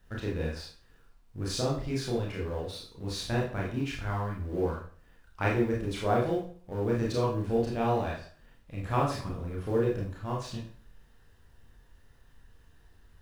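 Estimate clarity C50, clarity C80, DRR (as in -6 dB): 4.5 dB, 9.5 dB, -4.0 dB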